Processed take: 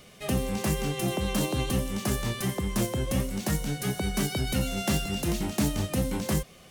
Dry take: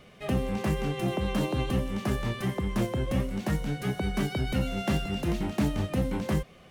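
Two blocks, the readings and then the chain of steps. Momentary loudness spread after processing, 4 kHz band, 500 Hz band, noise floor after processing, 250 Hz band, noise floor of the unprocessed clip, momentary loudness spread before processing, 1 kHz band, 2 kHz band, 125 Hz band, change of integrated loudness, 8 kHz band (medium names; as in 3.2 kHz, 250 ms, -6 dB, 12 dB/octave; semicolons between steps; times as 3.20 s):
2 LU, +4.5 dB, 0.0 dB, -52 dBFS, 0.0 dB, -53 dBFS, 2 LU, 0.0 dB, +1.5 dB, 0.0 dB, +1.0 dB, +12.0 dB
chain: tone controls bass 0 dB, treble +13 dB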